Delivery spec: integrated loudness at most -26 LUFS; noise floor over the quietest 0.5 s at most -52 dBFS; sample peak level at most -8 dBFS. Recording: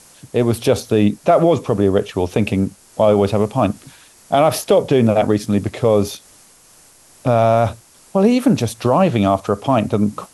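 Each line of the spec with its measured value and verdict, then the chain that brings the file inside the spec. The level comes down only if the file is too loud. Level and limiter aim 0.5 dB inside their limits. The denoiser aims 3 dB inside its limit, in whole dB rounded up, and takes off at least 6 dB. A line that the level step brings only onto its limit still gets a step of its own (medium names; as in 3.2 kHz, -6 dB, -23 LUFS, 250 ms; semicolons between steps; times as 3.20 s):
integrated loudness -17.0 LUFS: fail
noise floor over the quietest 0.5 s -48 dBFS: fail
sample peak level -3.5 dBFS: fail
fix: trim -9.5 dB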